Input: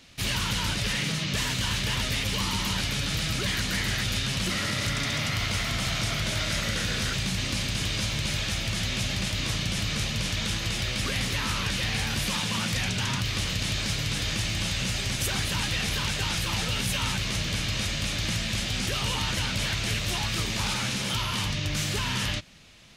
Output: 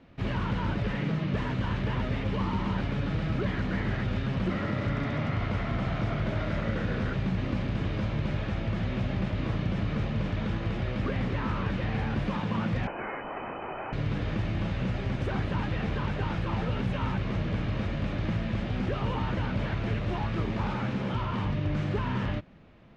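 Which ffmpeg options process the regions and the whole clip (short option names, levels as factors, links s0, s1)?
-filter_complex "[0:a]asettb=1/sr,asplit=3[s0][s1][s2];[s0]atrim=end=12.874[s3];[s1]atrim=start=12.87:end=13.93,asetpts=PTS-STARTPTS,afade=t=in:d=0.004:c=qsin,afade=t=out:st=1.056:d=0.004:c=qsin,lowshelf=f=410:t=q:w=3:g=-12,lowpass=f=2600:t=q:w=0.5098,lowpass=f=2600:t=q:w=0.6013,lowpass=f=2600:t=q:w=0.9,lowpass=f=2600:t=q:w=2.563,afreqshift=-3100[s4];[s2]atrim=start=13.926[s5];[s3][s4]acrossfade=d=0.004:c1=hsin:c2=qsin[s6];[s6][s5]acrossfade=d=0.004:c1=qsin:c2=hsin,lowpass=1300,equalizer=f=330:t=o:w=2.2:g=4.5"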